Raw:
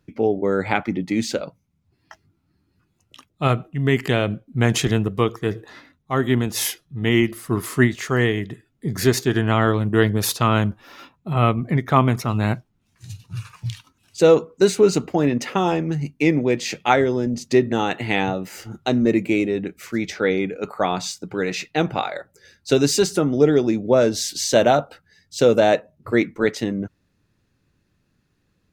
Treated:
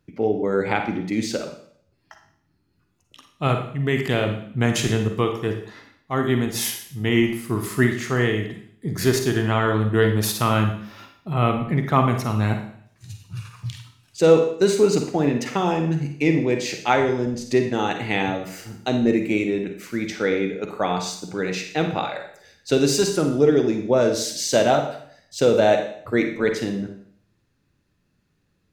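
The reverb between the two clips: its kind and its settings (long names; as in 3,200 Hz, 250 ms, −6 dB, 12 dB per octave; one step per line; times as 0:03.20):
four-comb reverb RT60 0.61 s, DRR 5 dB
level −2.5 dB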